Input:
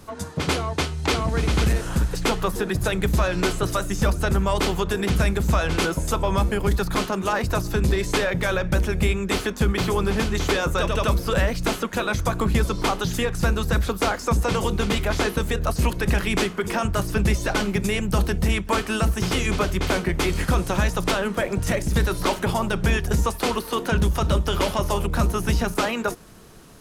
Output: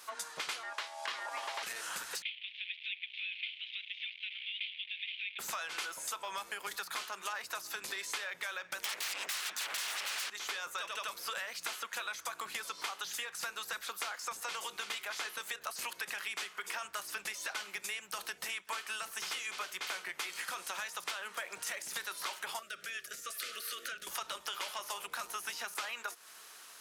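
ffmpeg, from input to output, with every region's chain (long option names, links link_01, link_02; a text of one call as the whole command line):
ffmpeg -i in.wav -filter_complex "[0:a]asettb=1/sr,asplit=3[link_01][link_02][link_03];[link_01]atrim=end=0.634[link_04];[link_02]atrim=start=0.63:end=1.63,asetpts=PTS-STARTPTS,afade=type=in:duration=0.004:curve=qsin,afade=type=out:start_time=0.996:duration=0.004:curve=qsin,highpass=71,acrossover=split=4500[link_05][link_06];[link_06]acompressor=threshold=-40dB:ratio=4:attack=1:release=60[link_07];[link_05][link_07]amix=inputs=2:normalize=0,aeval=exprs='val(0)*sin(2*PI*740*n/s)':channel_layout=same[link_08];[link_03]atrim=start=1.626[link_09];[link_04][link_08]acrossfade=duration=0.004:curve1=hsin:curve2=qsin[link_10];[link_10][link_09]acrossfade=duration=0.004:curve1=qsin:curve2=hsin,asettb=1/sr,asplit=3[link_11][link_12][link_13];[link_11]atrim=end=2.224[link_14];[link_12]atrim=start=2.22:end=5.39,asetpts=PTS-STARTPTS,afade=type=in:duration=0.004:curve=qsin,afade=type=out:start_time=3.166:duration=0.004:curve=qsin,acrusher=bits=6:dc=4:mix=0:aa=0.000001,asuperpass=centerf=2800:order=8:qfactor=2[link_15];[link_13]atrim=start=5.386[link_16];[link_14][link_15]acrossfade=duration=0.004:curve1=hsin:curve2=qsin[link_17];[link_17][link_16]acrossfade=duration=0.004:curve1=qsin:curve2=hsin,asettb=1/sr,asplit=3[link_18][link_19][link_20];[link_18]atrim=end=8.844[link_21];[link_19]atrim=start=8.84:end=10.3,asetpts=PTS-STARTPTS,afade=type=in:duration=0.004:curve=qsin,afade=type=out:start_time=1.456:duration=0.004:curve=qsin,acrossover=split=130|1200|3700[link_22][link_23][link_24][link_25];[link_22]acompressor=threshold=-29dB:ratio=3[link_26];[link_23]acompressor=threshold=-38dB:ratio=3[link_27];[link_24]acompressor=threshold=-32dB:ratio=3[link_28];[link_25]acompressor=threshold=-48dB:ratio=3[link_29];[link_26][link_27][link_28][link_29]amix=inputs=4:normalize=0,aeval=exprs='0.15*sin(PI/2*8.91*val(0)/0.15)':channel_layout=same[link_30];[link_20]atrim=start=10.296[link_31];[link_21][link_30]acrossfade=duration=0.004:curve1=hsin:curve2=qsin[link_32];[link_32][link_31]acrossfade=duration=0.004:curve1=qsin:curve2=hsin,asettb=1/sr,asplit=3[link_33][link_34][link_35];[link_33]atrim=end=22.594[link_36];[link_34]atrim=start=22.59:end=24.07,asetpts=PTS-STARTPTS,afade=type=in:duration=0.004:curve=qsin,afade=type=out:start_time=1.476:duration=0.004:curve=qsin,asuperstop=centerf=880:order=20:qfactor=1.8,acompressor=threshold=-31dB:ratio=4:attack=3.2:release=140:knee=1:detection=peak[link_37];[link_35]atrim=start=24.066[link_38];[link_36][link_37]acrossfade=duration=0.004:curve1=hsin:curve2=qsin[link_39];[link_39][link_38]acrossfade=duration=0.004:curve1=qsin:curve2=hsin,highpass=1300,acompressor=threshold=-38dB:ratio=6,volume=1dB" out.wav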